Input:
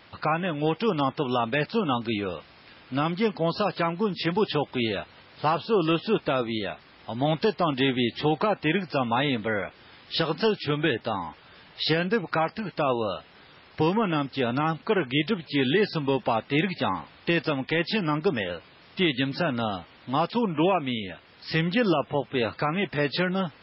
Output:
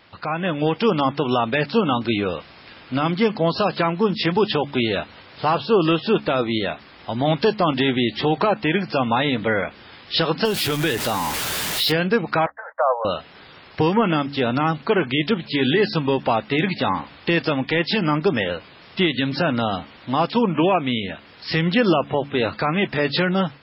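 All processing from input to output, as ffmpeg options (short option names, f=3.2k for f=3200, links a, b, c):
-filter_complex "[0:a]asettb=1/sr,asplit=3[a][b][c];[a]atrim=end=10.454[d];[b]atrim=start=10.45:end=11.92,asetpts=PTS-STARTPTS,afade=t=in:d=0.004:c=qsin,afade=t=out:st=1.466:d=0.004:c=qsin,aeval=exprs='val(0)+0.5*0.0316*sgn(val(0))':c=same,aemphasis=mode=production:type=cd,acompressor=threshold=-28dB:ratio=2:attack=3.2:release=140:knee=1:detection=peak[e];[c]atrim=start=11.916[f];[d][e]acrossfade=d=0.004:c1=hsin:c2=qsin[g];[g][f]acrossfade=d=0.004:c1=qsin:c2=hsin,asettb=1/sr,asplit=3[h][i][j];[h]atrim=end=12.464[k];[i]atrim=start=12.46:end=13.05,asetpts=PTS-STARTPTS,afade=t=in:d=0.004:c=qsin,afade=t=out:st=0.586:d=0.004:c=qsin,agate=range=-23dB:threshold=-42dB:ratio=16:release=100:detection=peak,asuperpass=centerf=980:order=20:qfactor=0.7[l];[j]atrim=start=13.046[m];[k][l]acrossfade=d=0.004:c1=hsin:c2=qsin[n];[n][m]acrossfade=d=0.004:c1=qsin:c2=hsin,alimiter=limit=-15.5dB:level=0:latency=1:release=82,bandreject=f=70.88:t=h:w=4,bandreject=f=141.76:t=h:w=4,bandreject=f=212.64:t=h:w=4,bandreject=f=283.52:t=h:w=4,dynaudnorm=f=270:g=3:m=7dB"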